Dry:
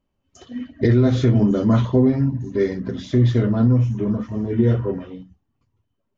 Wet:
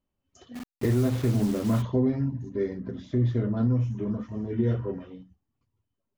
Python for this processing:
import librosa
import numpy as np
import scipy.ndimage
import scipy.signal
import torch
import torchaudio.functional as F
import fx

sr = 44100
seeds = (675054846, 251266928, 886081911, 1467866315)

y = fx.delta_hold(x, sr, step_db=-27.0, at=(0.54, 1.81), fade=0.02)
y = fx.high_shelf(y, sr, hz=2000.0, db=-9.0, at=(2.49, 3.57))
y = F.gain(torch.from_numpy(y), -8.0).numpy()